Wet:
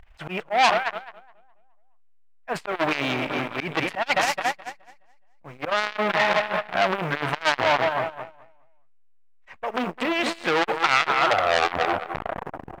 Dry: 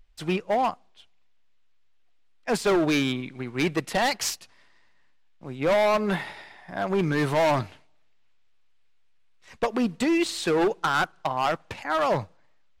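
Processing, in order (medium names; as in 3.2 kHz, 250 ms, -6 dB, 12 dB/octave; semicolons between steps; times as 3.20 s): tape stop on the ending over 1.97 s; treble shelf 4.2 kHz -10 dB; in parallel at -7.5 dB: short-mantissa float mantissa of 2-bit; on the sum: feedback delay 211 ms, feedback 59%, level -13 dB; peak limiter -24 dBFS, peak gain reduction 11.5 dB; high-order bell 1.3 kHz +10.5 dB 2.6 oct; slow attack 141 ms; transformer saturation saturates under 2.9 kHz; trim +7.5 dB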